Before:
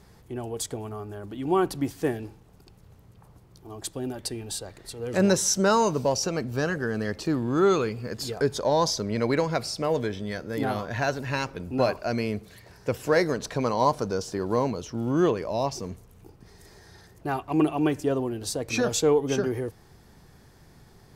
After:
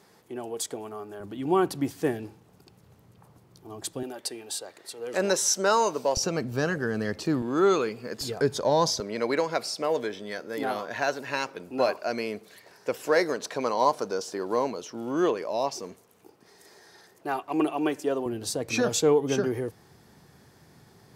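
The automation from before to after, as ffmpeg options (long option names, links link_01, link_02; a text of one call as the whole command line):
ffmpeg -i in.wav -af "asetnsamples=nb_out_samples=441:pad=0,asendcmd='1.2 highpass f 120;4.03 highpass f 390;6.17 highpass f 100;7.42 highpass f 240;8.21 highpass f 100;9 highpass f 320;18.26 highpass f 110',highpass=260" out.wav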